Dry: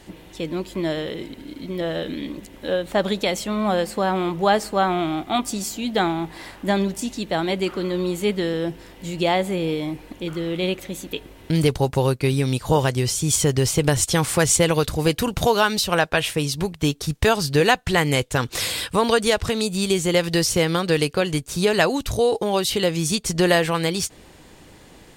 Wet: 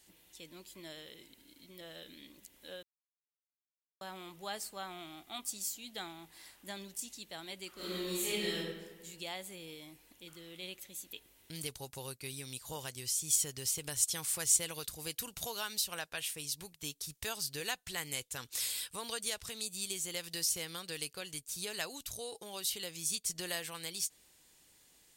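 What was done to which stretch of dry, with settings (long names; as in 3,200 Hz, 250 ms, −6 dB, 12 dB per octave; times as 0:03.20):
0:02.83–0:04.01: silence
0:07.74–0:08.56: thrown reverb, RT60 1.3 s, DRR −11.5 dB
whole clip: first-order pre-emphasis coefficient 0.9; level −8 dB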